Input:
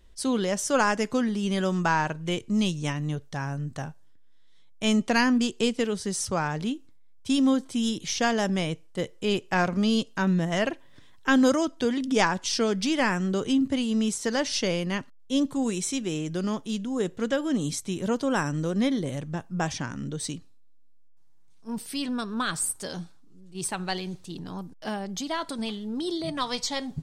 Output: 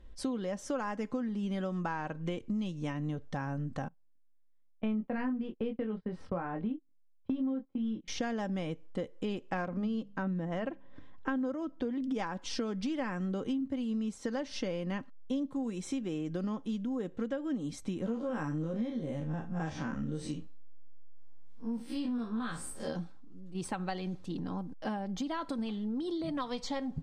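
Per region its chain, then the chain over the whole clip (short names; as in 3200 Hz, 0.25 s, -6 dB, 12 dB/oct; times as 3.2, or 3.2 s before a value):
3.88–8.08 gate -34 dBFS, range -22 dB + air absorption 450 m + doubler 23 ms -5 dB
9.65–12.03 high shelf 3100 Hz -9.5 dB + notches 50/100/150/200 Hz
18.06–22.96 time blur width 85 ms + doubler 13 ms -4 dB
whole clip: LPF 1300 Hz 6 dB/oct; comb 3.8 ms, depth 37%; compressor 6:1, threshold -35 dBFS; gain +2.5 dB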